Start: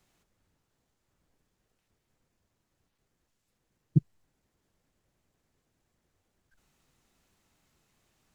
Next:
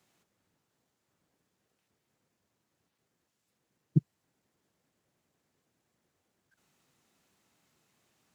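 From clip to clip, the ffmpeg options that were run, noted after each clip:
ffmpeg -i in.wav -af "highpass=130" out.wav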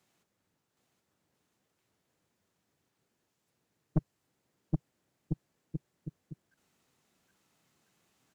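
ffmpeg -i in.wav -af "aecho=1:1:770|1348|1781|2105|2349:0.631|0.398|0.251|0.158|0.1,aeval=exprs='(tanh(14.1*val(0)+0.75)-tanh(0.75))/14.1':channel_layout=same,volume=2.5dB" out.wav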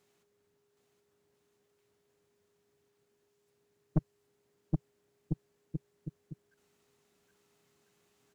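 ffmpeg -i in.wav -af "aeval=exprs='val(0)+0.0002*sin(2*PI*410*n/s)':channel_layout=same" out.wav

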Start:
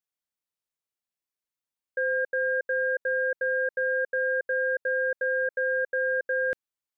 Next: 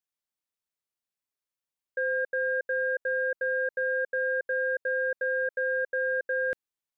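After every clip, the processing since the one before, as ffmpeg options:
ffmpeg -i in.wav -af "acontrast=63,volume=-8dB" out.wav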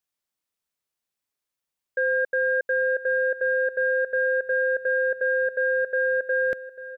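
ffmpeg -i in.wav -af "aecho=1:1:845|1690|2535:0.178|0.0551|0.0171,volume=5dB" out.wav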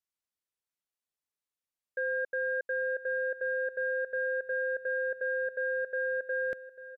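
ffmpeg -i in.wav -af "aresample=32000,aresample=44100,volume=-8.5dB" out.wav

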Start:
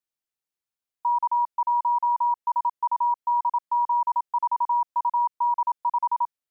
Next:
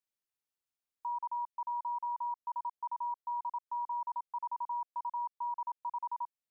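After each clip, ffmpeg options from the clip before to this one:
ffmpeg -i in.wav -af "alimiter=level_in=4dB:limit=-24dB:level=0:latency=1:release=345,volume=-4dB,volume=-4dB" out.wav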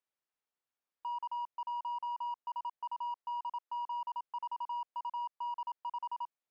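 ffmpeg -i in.wav -filter_complex "[0:a]asplit=2[link_01][link_02];[link_02]highpass=frequency=720:poles=1,volume=12dB,asoftclip=type=tanh:threshold=-31.5dB[link_03];[link_01][link_03]amix=inputs=2:normalize=0,lowpass=frequency=1100:poles=1,volume=-6dB" out.wav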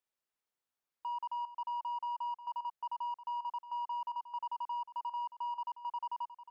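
ffmpeg -i in.wav -af "aecho=1:1:360:0.224" out.wav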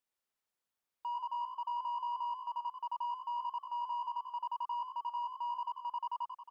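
ffmpeg -i in.wav -filter_complex "[0:a]asplit=5[link_01][link_02][link_03][link_04][link_05];[link_02]adelay=91,afreqshift=57,volume=-9dB[link_06];[link_03]adelay=182,afreqshift=114,volume=-18.1dB[link_07];[link_04]adelay=273,afreqshift=171,volume=-27.2dB[link_08];[link_05]adelay=364,afreqshift=228,volume=-36.4dB[link_09];[link_01][link_06][link_07][link_08][link_09]amix=inputs=5:normalize=0" out.wav

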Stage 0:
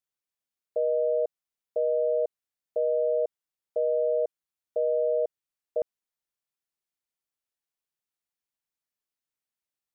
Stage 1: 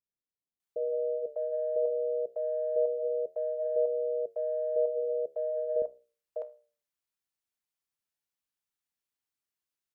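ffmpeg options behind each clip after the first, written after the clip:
ffmpeg -i in.wav -filter_complex "[0:a]flanger=delay=9.6:depth=6.5:regen=-76:speed=0.24:shape=sinusoidal,acontrast=61,acrossover=split=560[link_01][link_02];[link_02]adelay=600[link_03];[link_01][link_03]amix=inputs=2:normalize=0,volume=-2.5dB" out.wav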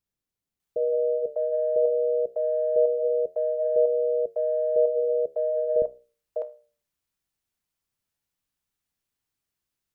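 ffmpeg -i in.wav -af "lowshelf=frequency=210:gain=11.5,volume=5dB" out.wav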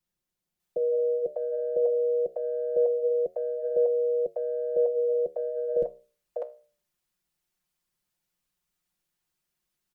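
ffmpeg -i in.wav -filter_complex "[0:a]aecho=1:1:5.6:0.83,acrossover=split=150|380[link_01][link_02][link_03];[link_01]acrusher=bits=5:mode=log:mix=0:aa=0.000001[link_04];[link_04][link_02][link_03]amix=inputs=3:normalize=0" out.wav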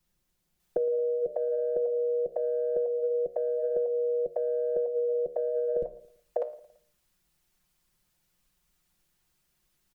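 ffmpeg -i in.wav -af "lowshelf=frequency=110:gain=10,acompressor=threshold=-33dB:ratio=12,aecho=1:1:112|224|336:0.0944|0.0444|0.0209,volume=7.5dB" out.wav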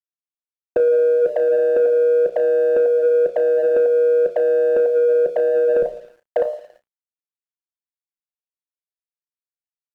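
ffmpeg -i in.wav -filter_complex "[0:a]asplit=2[link_01][link_02];[link_02]highpass=frequency=720:poles=1,volume=17dB,asoftclip=type=tanh:threshold=-15dB[link_03];[link_01][link_03]amix=inputs=2:normalize=0,lowpass=frequency=1100:poles=1,volume=-6dB,aeval=exprs='sgn(val(0))*max(abs(val(0))-0.00119,0)':channel_layout=same,asplit=2[link_04][link_05];[link_05]adelay=33,volume=-12dB[link_06];[link_04][link_06]amix=inputs=2:normalize=0,volume=7.5dB" out.wav

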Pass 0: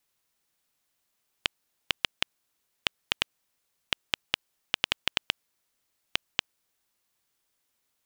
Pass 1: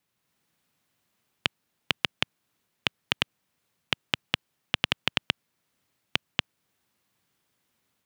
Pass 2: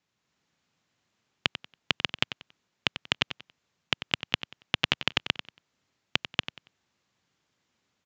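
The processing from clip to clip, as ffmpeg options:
ffmpeg -i in.wav -af "highpass=120,bass=frequency=250:gain=11,treble=frequency=4000:gain=-6,dynaudnorm=framelen=160:gausssize=3:maxgain=4.5dB,volume=1dB" out.wav
ffmpeg -i in.wav -filter_complex "[0:a]asplit=2[link_01][link_02];[link_02]aecho=0:1:93|186|279:0.251|0.0653|0.017[link_03];[link_01][link_03]amix=inputs=2:normalize=0,aresample=16000,aresample=44100" out.wav

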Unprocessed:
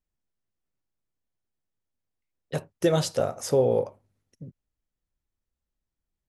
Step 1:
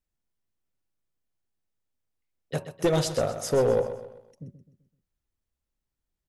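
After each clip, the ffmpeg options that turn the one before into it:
ffmpeg -i in.wav -filter_complex "[0:a]bandreject=frequency=186.6:width_type=h:width=4,bandreject=frequency=373.2:width_type=h:width=4,bandreject=frequency=559.8:width_type=h:width=4,bandreject=frequency=746.4:width_type=h:width=4,bandreject=frequency=933:width_type=h:width=4,bandreject=frequency=1119.6:width_type=h:width=4,aeval=exprs='clip(val(0),-1,0.119)':channel_layout=same,asplit=2[link_01][link_02];[link_02]aecho=0:1:128|256|384|512:0.266|0.114|0.0492|0.0212[link_03];[link_01][link_03]amix=inputs=2:normalize=0" out.wav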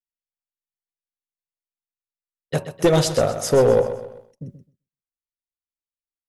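ffmpeg -i in.wav -af "agate=range=-33dB:threshold=-49dB:ratio=3:detection=peak,volume=7dB" out.wav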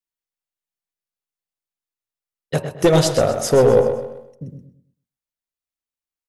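ffmpeg -i in.wav -filter_complex "[0:a]asplit=2[link_01][link_02];[link_02]adelay=106,lowpass=frequency=1300:poles=1,volume=-8dB,asplit=2[link_03][link_04];[link_04]adelay=106,lowpass=frequency=1300:poles=1,volume=0.34,asplit=2[link_05][link_06];[link_06]adelay=106,lowpass=frequency=1300:poles=1,volume=0.34,asplit=2[link_07][link_08];[link_08]adelay=106,lowpass=frequency=1300:poles=1,volume=0.34[link_09];[link_01][link_03][link_05][link_07][link_09]amix=inputs=5:normalize=0,volume=2dB" out.wav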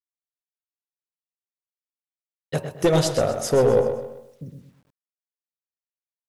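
ffmpeg -i in.wav -af "acrusher=bits=9:mix=0:aa=0.000001,volume=-4.5dB" out.wav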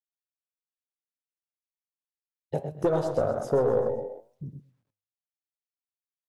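ffmpeg -i in.wav -filter_complex "[0:a]afwtdn=0.0447,acrossover=split=340|1600[link_01][link_02][link_03];[link_01]acompressor=threshold=-31dB:ratio=4[link_04];[link_02]acompressor=threshold=-21dB:ratio=4[link_05];[link_03]acompressor=threshold=-45dB:ratio=4[link_06];[link_04][link_05][link_06]amix=inputs=3:normalize=0,flanger=delay=6.4:depth=3.7:regen=87:speed=1.1:shape=triangular,volume=3.5dB" out.wav

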